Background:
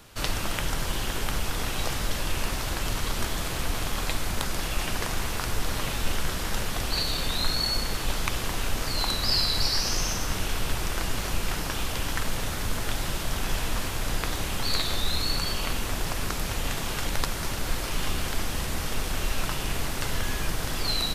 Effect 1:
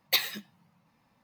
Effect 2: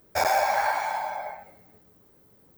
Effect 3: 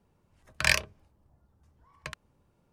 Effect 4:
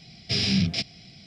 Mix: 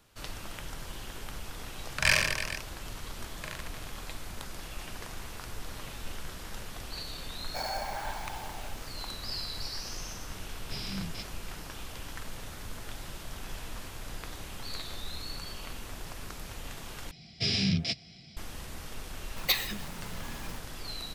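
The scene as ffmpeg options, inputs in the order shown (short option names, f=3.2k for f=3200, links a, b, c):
-filter_complex "[4:a]asplit=2[a][b];[0:a]volume=-12.5dB[c];[3:a]aecho=1:1:40|90|152.5|230.6|328.3|450.4:0.794|0.631|0.501|0.398|0.316|0.251[d];[b]asplit=2[e][f];[f]adelay=13,volume=-13dB[g];[e][g]amix=inputs=2:normalize=0[h];[1:a]aeval=exprs='val(0)+0.5*0.0126*sgn(val(0))':c=same[i];[c]asplit=2[j][k];[j]atrim=end=17.114[l];[h]atrim=end=1.26,asetpts=PTS-STARTPTS,volume=-4dB[m];[k]atrim=start=18.366[n];[d]atrim=end=2.72,asetpts=PTS-STARTPTS,volume=-3dB,afade=t=in:d=0.004:c=hsin,afade=t=out:st=2.716:d=0.004:c=hsin,adelay=1380[o];[2:a]atrim=end=2.57,asetpts=PTS-STARTPTS,volume=-13.5dB,afade=t=in:d=0.004:c=hsin,afade=t=out:st=2.566:d=0.004:c=hsin,adelay=7390[p];[a]atrim=end=1.26,asetpts=PTS-STARTPTS,volume=-15dB,afade=t=in:d=0.004:c=hsin,afade=t=out:st=1.256:d=0.004:c=hsin,adelay=10410[q];[i]atrim=end=1.23,asetpts=PTS-STARTPTS,volume=-2dB,afade=t=in:d=0.004:c=hsin,afade=t=out:st=1.226:d=0.004:c=hsin,adelay=19360[r];[l][m]acrossfade=d=0.004:c1=hsin:c2=hsin[s];[s][n]acrossfade=d=0.004:c1=hsin:c2=hsin[t];[t][o][p][q][r]amix=inputs=5:normalize=0"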